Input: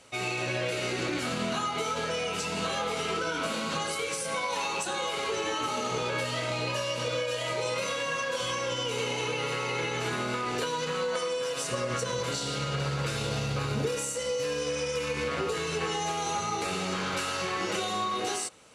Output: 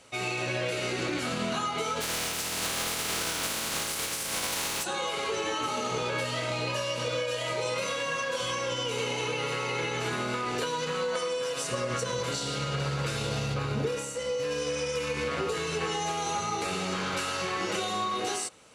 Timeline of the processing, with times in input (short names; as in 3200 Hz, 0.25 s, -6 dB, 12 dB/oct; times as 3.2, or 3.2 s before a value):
2–4.83 spectral contrast lowered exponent 0.26
13.54–14.51 high shelf 4900 Hz -7.5 dB